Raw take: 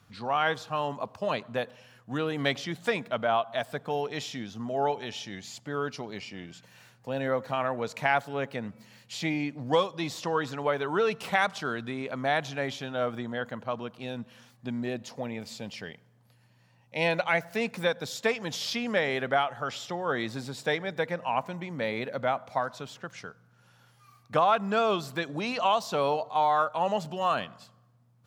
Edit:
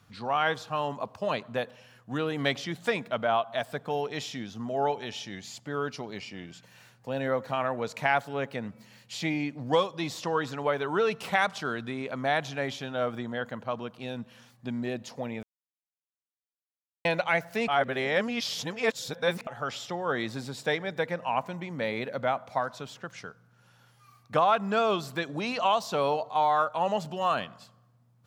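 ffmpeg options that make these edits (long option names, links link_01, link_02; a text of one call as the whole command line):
ffmpeg -i in.wav -filter_complex "[0:a]asplit=5[link_01][link_02][link_03][link_04][link_05];[link_01]atrim=end=15.43,asetpts=PTS-STARTPTS,afade=type=out:start_time=15.426:duration=0.004:curve=hsin[link_06];[link_02]atrim=start=15.43:end=17.05,asetpts=PTS-STARTPTS,volume=0[link_07];[link_03]atrim=start=17.05:end=17.682,asetpts=PTS-STARTPTS,afade=type=in:duration=0.004:curve=hsin[link_08];[link_04]atrim=start=17.678:end=19.472,asetpts=PTS-STARTPTS,areverse[link_09];[link_05]atrim=start=19.468[link_10];[link_06][link_07][link_08]concat=n=3:v=0:a=1[link_11];[link_11][link_09]acrossfade=duration=0.004:curve1=hsin:curve2=hsin[link_12];[link_12][link_10]acrossfade=duration=0.004:curve1=hsin:curve2=hsin" out.wav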